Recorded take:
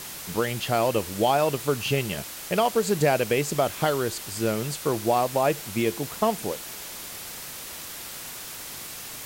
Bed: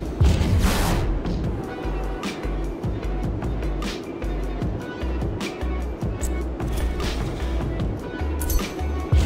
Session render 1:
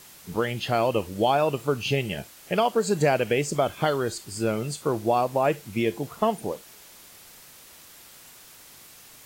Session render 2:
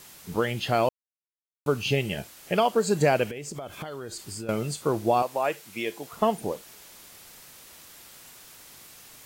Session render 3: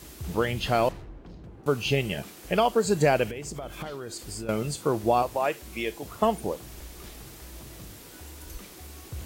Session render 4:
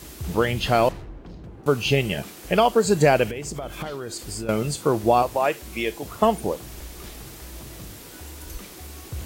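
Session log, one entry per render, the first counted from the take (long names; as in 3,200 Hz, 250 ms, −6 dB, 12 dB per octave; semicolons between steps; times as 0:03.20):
noise reduction from a noise print 11 dB
0:00.89–0:01.66: silence; 0:03.26–0:04.49: downward compressor 16 to 1, threshold −32 dBFS; 0:05.22–0:06.13: high-pass filter 770 Hz 6 dB per octave
mix in bed −20 dB
level +4.5 dB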